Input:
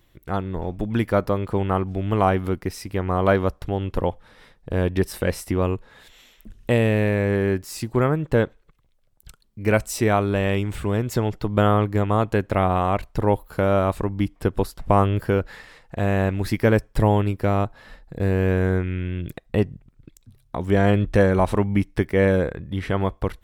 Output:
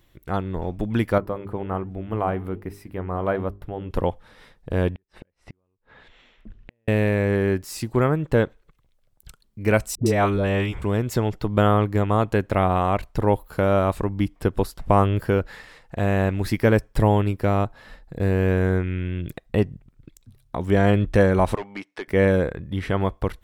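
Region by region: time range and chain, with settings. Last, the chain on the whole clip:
0:01.18–0:03.91: flanger 1.3 Hz, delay 3.5 ms, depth 5.8 ms, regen −85% + parametric band 5,700 Hz −13 dB 1.8 octaves + mains-hum notches 50/100/150/200/250/300/350/400 Hz
0:04.95–0:06.88: low-pass filter 2,600 Hz + downward compressor 10 to 1, threshold −29 dBFS + gate with flip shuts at −29 dBFS, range −38 dB
0:09.95–0:10.82: high-shelf EQ 10,000 Hz −6.5 dB + all-pass dispersion highs, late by 110 ms, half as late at 600 Hz
0:21.55–0:22.08: high-pass filter 560 Hz + hard clipping −25 dBFS + high-frequency loss of the air 74 metres
whole clip: no processing

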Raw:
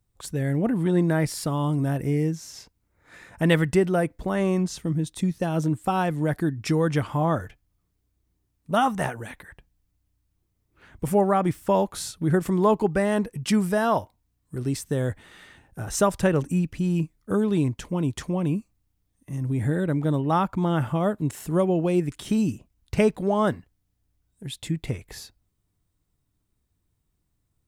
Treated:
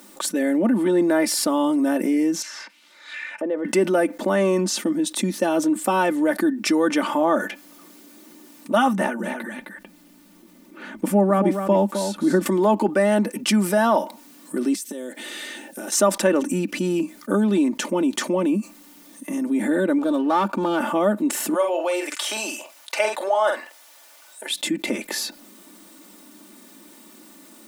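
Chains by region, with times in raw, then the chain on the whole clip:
0:02.42–0:03.65: downward compressor 3 to 1, threshold −25 dBFS + envelope filter 480–4,500 Hz, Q 2.6, down, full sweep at −33 dBFS
0:08.93–0:12.46: bass and treble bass +12 dB, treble −3 dB + single-tap delay 261 ms −10 dB + expander for the loud parts, over −27 dBFS
0:14.75–0:15.92: high-pass filter 320 Hz + parametric band 1,100 Hz −13 dB 1.9 octaves + downward compressor 12 to 1, threshold −46 dBFS
0:19.98–0:20.80: gain on one half-wave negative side −7 dB + parametric band 2,000 Hz −12 dB 0.26 octaves
0:21.54–0:24.51: high-pass filter 600 Hz 24 dB per octave + high-shelf EQ 11,000 Hz −4.5 dB + double-tracking delay 47 ms −8 dB
whole clip: elliptic high-pass filter 200 Hz, stop band 40 dB; comb filter 3.4 ms, depth 61%; envelope flattener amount 50%

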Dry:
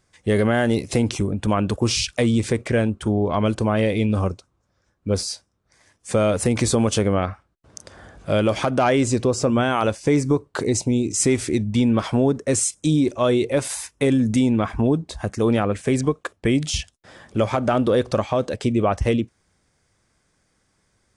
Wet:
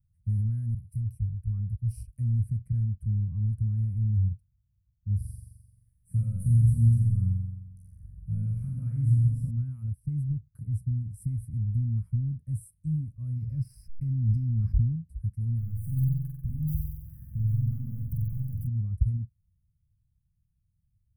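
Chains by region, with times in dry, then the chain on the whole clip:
0:00.74–0:02.03: parametric band 330 Hz −11 dB 1.7 octaves + multiband upward and downward expander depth 100%
0:05.16–0:09.51: double-tracking delay 17 ms −6 dB + flutter between parallel walls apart 7.4 metres, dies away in 1.1 s
0:13.36–0:14.92: slack as between gear wheels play −34.5 dBFS + low-pass with resonance 5,100 Hz, resonance Q 15 + envelope flattener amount 70%
0:15.58–0:18.67: downward compressor 2.5 to 1, threshold −33 dBFS + leveller curve on the samples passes 3 + flutter between parallel walls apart 7.9 metres, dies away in 1 s
whole clip: inverse Chebyshev band-stop filter 340–7,200 Hz, stop band 50 dB; parametric band 770 Hz +2.5 dB

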